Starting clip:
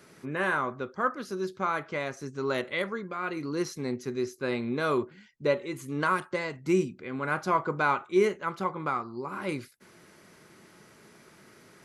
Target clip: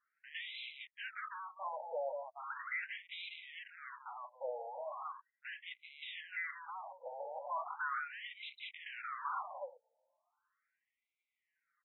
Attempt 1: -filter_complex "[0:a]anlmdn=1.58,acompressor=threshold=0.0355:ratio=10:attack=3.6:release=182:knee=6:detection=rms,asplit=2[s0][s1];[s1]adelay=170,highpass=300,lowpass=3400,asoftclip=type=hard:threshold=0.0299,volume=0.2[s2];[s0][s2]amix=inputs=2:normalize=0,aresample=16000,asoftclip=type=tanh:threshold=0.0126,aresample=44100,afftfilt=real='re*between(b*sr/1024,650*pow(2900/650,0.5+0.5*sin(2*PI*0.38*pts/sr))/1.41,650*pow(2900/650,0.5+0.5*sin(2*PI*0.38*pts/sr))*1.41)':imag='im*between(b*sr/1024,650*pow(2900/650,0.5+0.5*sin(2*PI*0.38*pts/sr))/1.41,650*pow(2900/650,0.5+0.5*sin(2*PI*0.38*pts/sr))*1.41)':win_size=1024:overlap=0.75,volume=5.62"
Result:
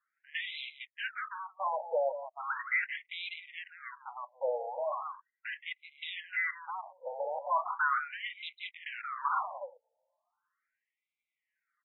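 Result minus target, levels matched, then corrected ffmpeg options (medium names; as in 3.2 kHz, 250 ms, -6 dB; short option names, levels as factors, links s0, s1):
saturation: distortion -5 dB
-filter_complex "[0:a]anlmdn=1.58,acompressor=threshold=0.0355:ratio=10:attack=3.6:release=182:knee=6:detection=rms,asplit=2[s0][s1];[s1]adelay=170,highpass=300,lowpass=3400,asoftclip=type=hard:threshold=0.0299,volume=0.2[s2];[s0][s2]amix=inputs=2:normalize=0,aresample=16000,asoftclip=type=tanh:threshold=0.00355,aresample=44100,afftfilt=real='re*between(b*sr/1024,650*pow(2900/650,0.5+0.5*sin(2*PI*0.38*pts/sr))/1.41,650*pow(2900/650,0.5+0.5*sin(2*PI*0.38*pts/sr))*1.41)':imag='im*between(b*sr/1024,650*pow(2900/650,0.5+0.5*sin(2*PI*0.38*pts/sr))/1.41,650*pow(2900/650,0.5+0.5*sin(2*PI*0.38*pts/sr))*1.41)':win_size=1024:overlap=0.75,volume=5.62"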